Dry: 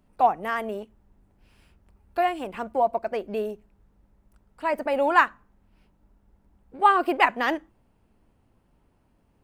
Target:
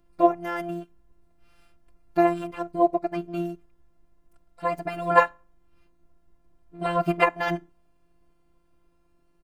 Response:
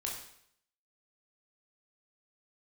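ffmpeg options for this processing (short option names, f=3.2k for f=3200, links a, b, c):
-filter_complex "[0:a]afftfilt=real='hypot(re,im)*cos(PI*b)':imag='0':win_size=512:overlap=0.75,asplit=2[a][b];[b]asetrate=22050,aresample=44100,atempo=2,volume=-4dB[c];[a][c]amix=inputs=2:normalize=0,volume=1.5dB"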